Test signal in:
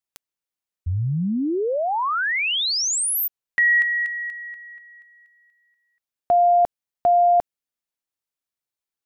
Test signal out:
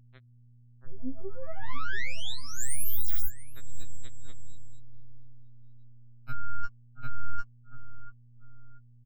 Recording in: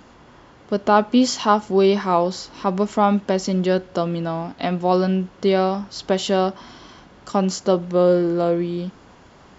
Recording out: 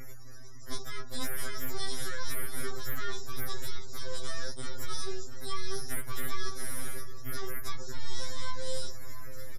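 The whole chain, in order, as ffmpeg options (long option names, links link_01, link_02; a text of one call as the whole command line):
ffmpeg -i in.wav -filter_complex "[0:a]acrossover=split=470|1700[link_01][link_02][link_03];[link_01]acompressor=threshold=-27dB:ratio=8[link_04];[link_02]acompressor=threshold=-20dB:ratio=8[link_05];[link_03]acompressor=threshold=-35dB:ratio=8[link_06];[link_04][link_05][link_06]amix=inputs=3:normalize=0,equalizer=frequency=560:width_type=o:width=0.24:gain=13,bandreject=frequency=50:width_type=h:width=6,bandreject=frequency=100:width_type=h:width=6,bandreject=frequency=150:width_type=h:width=6,bandreject=frequency=200:width_type=h:width=6,bandreject=frequency=250:width_type=h:width=6,bandreject=frequency=300:width_type=h:width=6,bandreject=frequency=350:width_type=h:width=6,bandreject=frequency=400:width_type=h:width=6,aexciter=amount=14.9:drive=8.2:freq=4200,aeval=exprs='abs(val(0))':channel_layout=same,acompressor=threshold=-20dB:ratio=20:attack=2.5:release=54:knee=6:detection=rms,asplit=2[link_07][link_08];[link_08]adelay=684,lowpass=frequency=4400:poles=1,volume=-13.5dB,asplit=2[link_09][link_10];[link_10]adelay=684,lowpass=frequency=4400:poles=1,volume=0.32,asplit=2[link_11][link_12];[link_12]adelay=684,lowpass=frequency=4400:poles=1,volume=0.32[link_13];[link_09][link_11][link_13]amix=inputs=3:normalize=0[link_14];[link_07][link_14]amix=inputs=2:normalize=0,alimiter=limit=-17dB:level=0:latency=1:release=230,afftfilt=real='re*gte(hypot(re,im),0.00891)':imag='im*gte(hypot(re,im),0.00891)':win_size=1024:overlap=0.75,aecho=1:1:7.2:0.76,aeval=exprs='val(0)+0.00501*(sin(2*PI*60*n/s)+sin(2*PI*2*60*n/s)/2+sin(2*PI*3*60*n/s)/3+sin(2*PI*4*60*n/s)/4+sin(2*PI*5*60*n/s)/5)':channel_layout=same,afftfilt=real='re*2.45*eq(mod(b,6),0)':imag='im*2.45*eq(mod(b,6),0)':win_size=2048:overlap=0.75,volume=-5.5dB" out.wav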